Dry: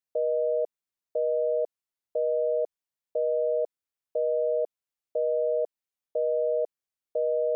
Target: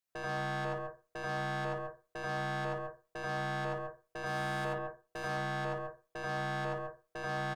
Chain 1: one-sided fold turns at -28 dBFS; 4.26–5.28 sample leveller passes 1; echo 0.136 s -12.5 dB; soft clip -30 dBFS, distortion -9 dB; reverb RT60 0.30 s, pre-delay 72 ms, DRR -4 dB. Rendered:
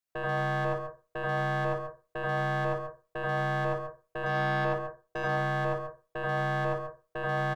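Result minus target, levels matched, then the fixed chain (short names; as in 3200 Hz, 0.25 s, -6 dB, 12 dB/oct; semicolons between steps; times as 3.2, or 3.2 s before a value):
soft clip: distortion -5 dB
one-sided fold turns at -28 dBFS; 4.26–5.28 sample leveller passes 1; echo 0.136 s -12.5 dB; soft clip -39 dBFS, distortion -4 dB; reverb RT60 0.30 s, pre-delay 72 ms, DRR -4 dB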